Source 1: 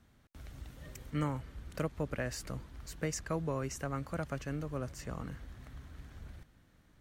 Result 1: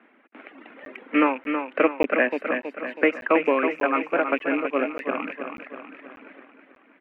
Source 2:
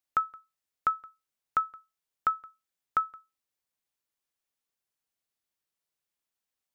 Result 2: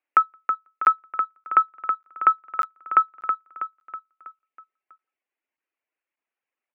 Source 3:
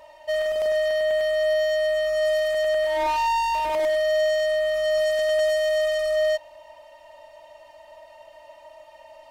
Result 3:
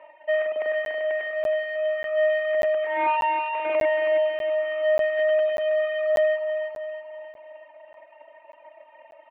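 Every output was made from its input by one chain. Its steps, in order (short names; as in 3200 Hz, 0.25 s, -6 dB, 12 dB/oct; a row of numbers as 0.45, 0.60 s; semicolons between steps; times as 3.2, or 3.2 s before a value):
rattling part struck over -36 dBFS, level -36 dBFS; in parallel at -7 dB: crossover distortion -43.5 dBFS; on the sum: steep high-pass 250 Hz 48 dB/oct; air absorption 400 m; reverb removal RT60 1.6 s; resonant high shelf 3500 Hz -12.5 dB, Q 3; on a send: feedback echo 0.323 s, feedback 50%, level -7 dB; on the sum: crackling interface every 0.59 s, samples 512, zero, from 0.85; match loudness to -24 LUFS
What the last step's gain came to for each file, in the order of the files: +15.5, +7.5, 0.0 dB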